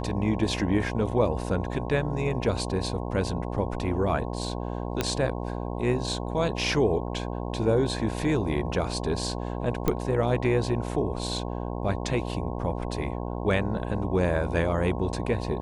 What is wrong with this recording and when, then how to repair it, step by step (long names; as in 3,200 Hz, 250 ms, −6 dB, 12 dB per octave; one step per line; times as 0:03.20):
mains buzz 60 Hz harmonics 18 −32 dBFS
0:05.01: click −10 dBFS
0:09.88: click −10 dBFS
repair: click removal
hum removal 60 Hz, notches 18